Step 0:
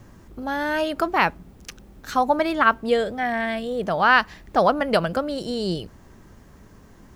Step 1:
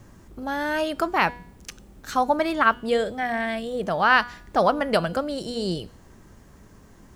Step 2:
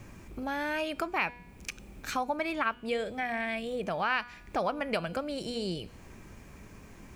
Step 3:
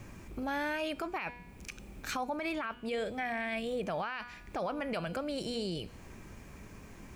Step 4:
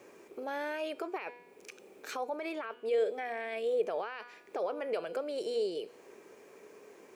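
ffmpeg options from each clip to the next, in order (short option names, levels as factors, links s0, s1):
-af "equalizer=f=8300:t=o:w=0.92:g=4,bandreject=f=242.9:t=h:w=4,bandreject=f=485.8:t=h:w=4,bandreject=f=728.7:t=h:w=4,bandreject=f=971.6:t=h:w=4,bandreject=f=1214.5:t=h:w=4,bandreject=f=1457.4:t=h:w=4,bandreject=f=1700.3:t=h:w=4,bandreject=f=1943.2:t=h:w=4,bandreject=f=2186.1:t=h:w=4,bandreject=f=2429:t=h:w=4,bandreject=f=2671.9:t=h:w=4,bandreject=f=2914.8:t=h:w=4,bandreject=f=3157.7:t=h:w=4,bandreject=f=3400.6:t=h:w=4,bandreject=f=3643.5:t=h:w=4,bandreject=f=3886.4:t=h:w=4,bandreject=f=4129.3:t=h:w=4,bandreject=f=4372.2:t=h:w=4,bandreject=f=4615.1:t=h:w=4,bandreject=f=4858:t=h:w=4,bandreject=f=5100.9:t=h:w=4,bandreject=f=5343.8:t=h:w=4,bandreject=f=5586.7:t=h:w=4,bandreject=f=5829.6:t=h:w=4,bandreject=f=6072.5:t=h:w=4,bandreject=f=6315.4:t=h:w=4,bandreject=f=6558.3:t=h:w=4,bandreject=f=6801.2:t=h:w=4,bandreject=f=7044.1:t=h:w=4,bandreject=f=7287:t=h:w=4,bandreject=f=7529.9:t=h:w=4,bandreject=f=7772.8:t=h:w=4,bandreject=f=8015.7:t=h:w=4,bandreject=f=8258.6:t=h:w=4,bandreject=f=8501.5:t=h:w=4,bandreject=f=8744.4:t=h:w=4,bandreject=f=8987.3:t=h:w=4,bandreject=f=9230.2:t=h:w=4,bandreject=f=9473.1:t=h:w=4,bandreject=f=9716:t=h:w=4,volume=0.841"
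-af "equalizer=f=2400:t=o:w=0.27:g=14,acompressor=threshold=0.0158:ratio=2"
-af "alimiter=level_in=1.41:limit=0.0631:level=0:latency=1:release=16,volume=0.708"
-af "highpass=f=430:t=q:w=4.9,volume=0.562"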